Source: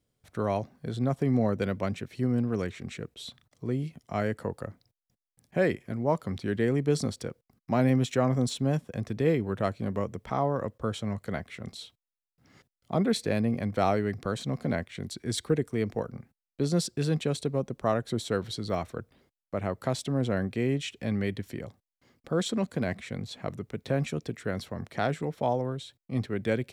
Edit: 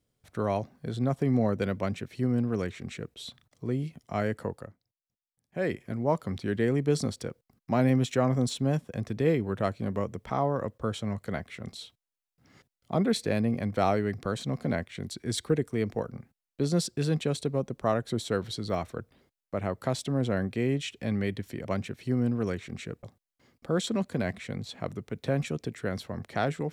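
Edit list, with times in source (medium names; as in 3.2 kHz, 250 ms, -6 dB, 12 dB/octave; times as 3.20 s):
1.77–3.15 s: copy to 21.65 s
4.45–5.80 s: dip -14.5 dB, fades 0.33 s linear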